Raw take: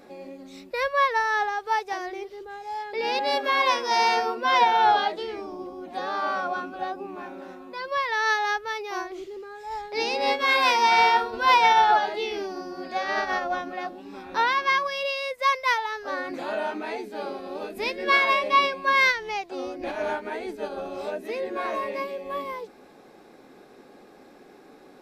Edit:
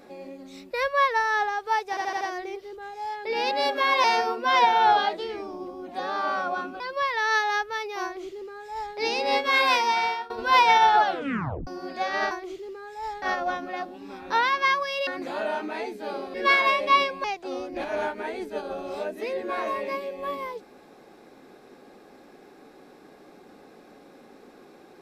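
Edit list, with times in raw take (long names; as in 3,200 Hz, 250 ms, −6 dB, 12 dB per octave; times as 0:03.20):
0:01.89: stutter 0.08 s, 5 plays
0:03.72–0:04.03: remove
0:06.79–0:07.75: remove
0:08.99–0:09.90: duplicate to 0:13.26
0:10.61–0:11.25: fade out, to −21 dB
0:12.00: tape stop 0.62 s
0:15.11–0:16.19: remove
0:17.46–0:17.97: remove
0:18.87–0:19.31: remove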